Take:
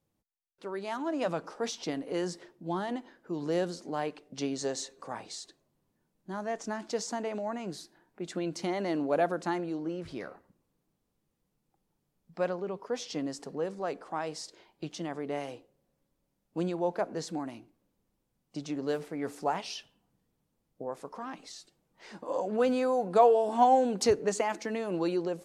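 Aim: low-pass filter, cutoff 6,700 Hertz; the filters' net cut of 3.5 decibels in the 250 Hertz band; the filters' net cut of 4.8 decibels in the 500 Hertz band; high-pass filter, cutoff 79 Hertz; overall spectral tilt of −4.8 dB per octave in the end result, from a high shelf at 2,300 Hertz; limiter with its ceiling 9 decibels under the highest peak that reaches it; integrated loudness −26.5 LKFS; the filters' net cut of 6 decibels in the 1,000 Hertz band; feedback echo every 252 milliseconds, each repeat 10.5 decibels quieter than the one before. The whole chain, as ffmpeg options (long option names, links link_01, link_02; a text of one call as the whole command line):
ffmpeg -i in.wav -af "highpass=79,lowpass=6700,equalizer=frequency=250:width_type=o:gain=-3,equalizer=frequency=500:width_type=o:gain=-3,equalizer=frequency=1000:width_type=o:gain=-6.5,highshelf=frequency=2300:gain=-4.5,alimiter=level_in=1dB:limit=-24dB:level=0:latency=1,volume=-1dB,aecho=1:1:252|504|756:0.299|0.0896|0.0269,volume=11.5dB" out.wav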